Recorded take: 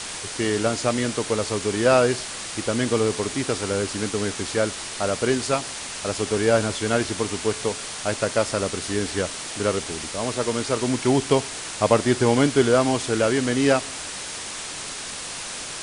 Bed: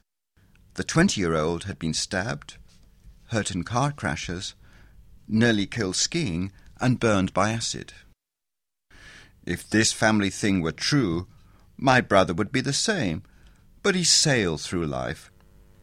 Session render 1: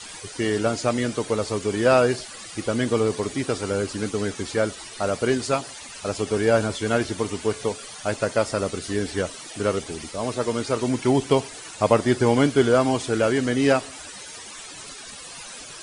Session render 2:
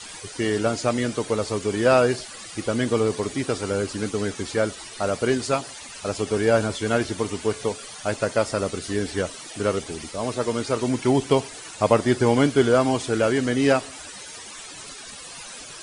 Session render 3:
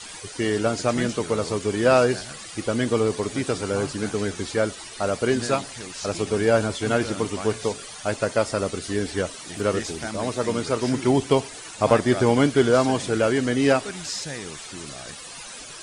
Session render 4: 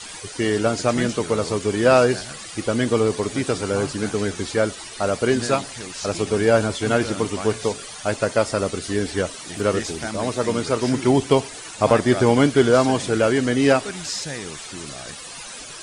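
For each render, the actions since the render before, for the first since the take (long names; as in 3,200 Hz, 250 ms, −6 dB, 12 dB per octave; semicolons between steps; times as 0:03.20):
broadband denoise 14 dB, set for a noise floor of −34 dBFS
no processing that can be heard
mix in bed −13 dB
level +2.5 dB; brickwall limiter −2 dBFS, peak gain reduction 2 dB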